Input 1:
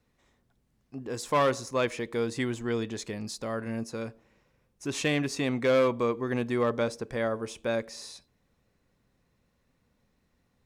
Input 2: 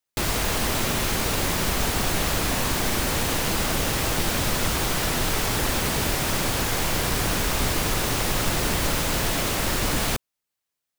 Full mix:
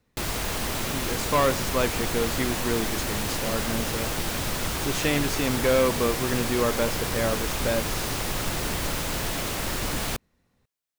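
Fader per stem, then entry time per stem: +2.0 dB, -4.5 dB; 0.00 s, 0.00 s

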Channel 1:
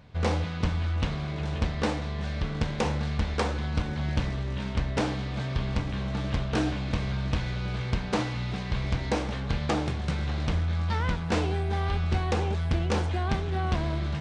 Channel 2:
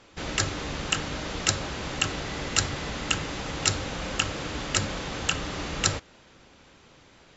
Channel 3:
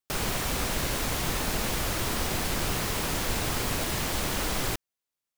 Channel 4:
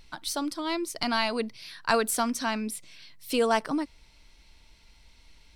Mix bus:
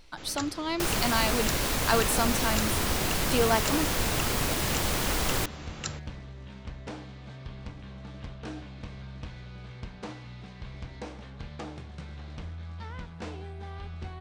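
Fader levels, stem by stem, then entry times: -12.5 dB, -11.5 dB, +1.0 dB, -1.0 dB; 1.90 s, 0.00 s, 0.70 s, 0.00 s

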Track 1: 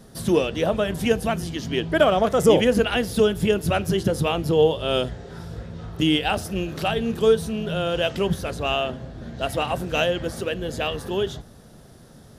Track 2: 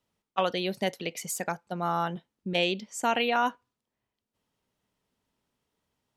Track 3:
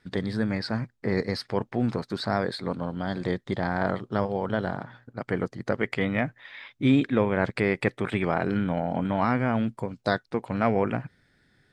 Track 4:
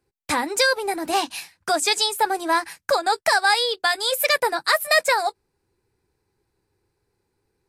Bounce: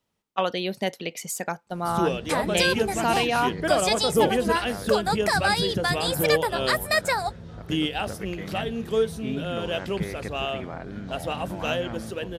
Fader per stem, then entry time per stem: -5.5 dB, +2.0 dB, -11.5 dB, -5.0 dB; 1.70 s, 0.00 s, 2.40 s, 2.00 s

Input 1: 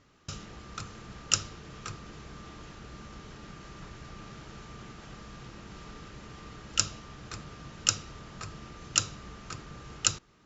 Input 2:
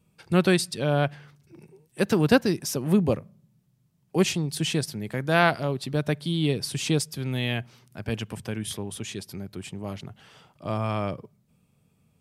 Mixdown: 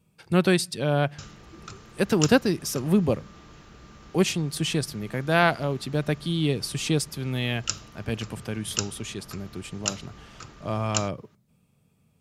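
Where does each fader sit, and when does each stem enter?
-2.5 dB, 0.0 dB; 0.90 s, 0.00 s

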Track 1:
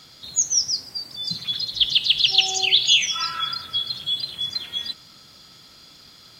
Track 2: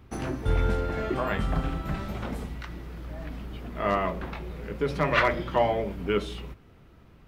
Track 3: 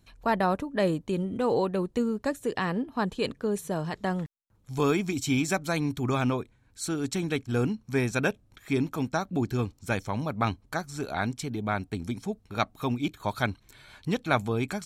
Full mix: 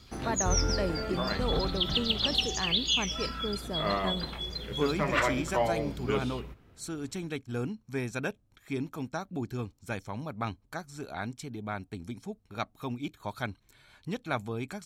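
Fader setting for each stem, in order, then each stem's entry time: -11.0 dB, -4.5 dB, -7.0 dB; 0.00 s, 0.00 s, 0.00 s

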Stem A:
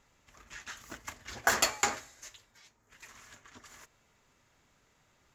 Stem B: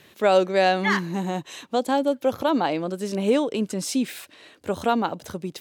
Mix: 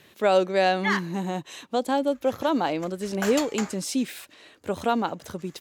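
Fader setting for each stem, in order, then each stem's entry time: -5.0 dB, -2.0 dB; 1.75 s, 0.00 s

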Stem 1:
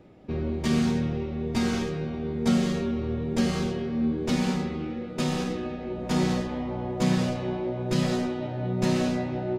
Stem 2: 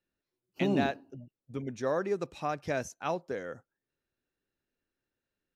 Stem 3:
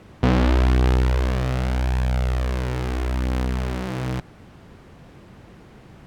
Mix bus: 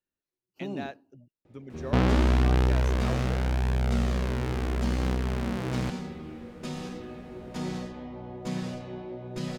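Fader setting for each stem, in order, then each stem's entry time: -9.0 dB, -7.0 dB, -4.5 dB; 1.45 s, 0.00 s, 1.70 s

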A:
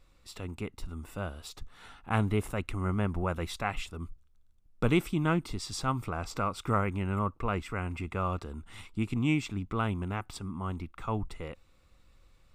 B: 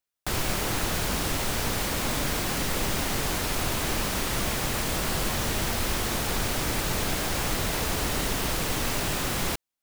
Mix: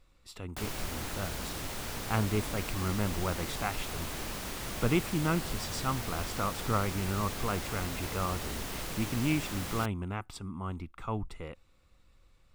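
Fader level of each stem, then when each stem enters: -2.0 dB, -10.5 dB; 0.00 s, 0.30 s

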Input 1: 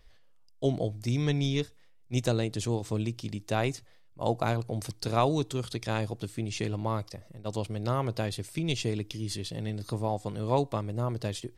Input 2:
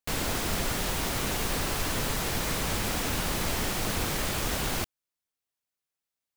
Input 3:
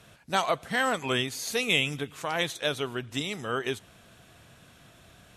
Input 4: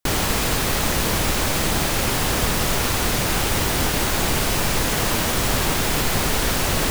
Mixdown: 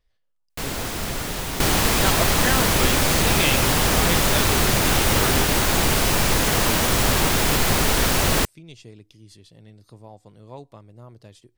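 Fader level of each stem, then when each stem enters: -13.5 dB, +1.5 dB, +0.5 dB, +1.5 dB; 0.00 s, 0.50 s, 1.70 s, 1.55 s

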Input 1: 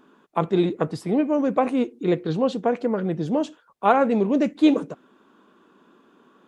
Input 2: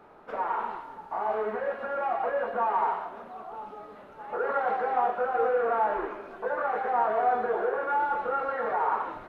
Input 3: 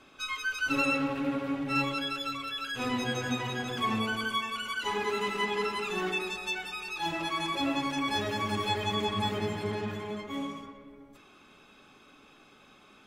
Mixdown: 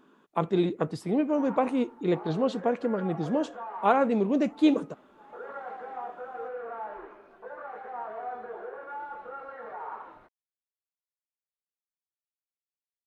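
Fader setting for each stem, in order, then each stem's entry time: -4.5 dB, -12.0 dB, mute; 0.00 s, 1.00 s, mute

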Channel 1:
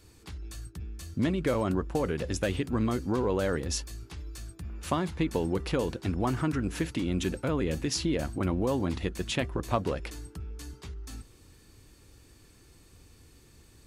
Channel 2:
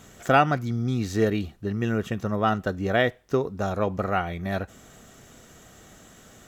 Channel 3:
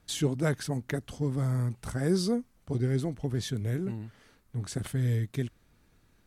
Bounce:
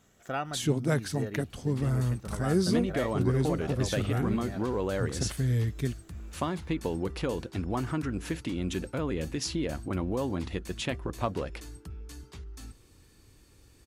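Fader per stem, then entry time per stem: -2.5 dB, -14.5 dB, +0.5 dB; 1.50 s, 0.00 s, 0.45 s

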